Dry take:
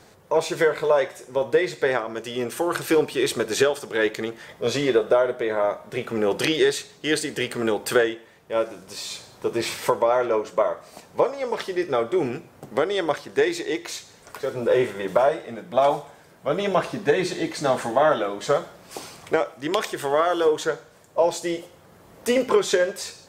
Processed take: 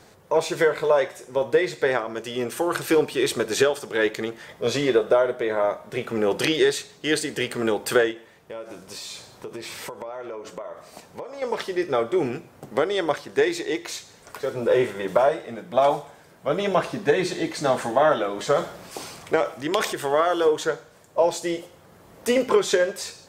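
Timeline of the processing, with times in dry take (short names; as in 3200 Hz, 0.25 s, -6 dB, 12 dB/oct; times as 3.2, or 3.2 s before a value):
8.11–11.42 compressor, threshold -32 dBFS
18.29–19.93 transient shaper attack 0 dB, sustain +6 dB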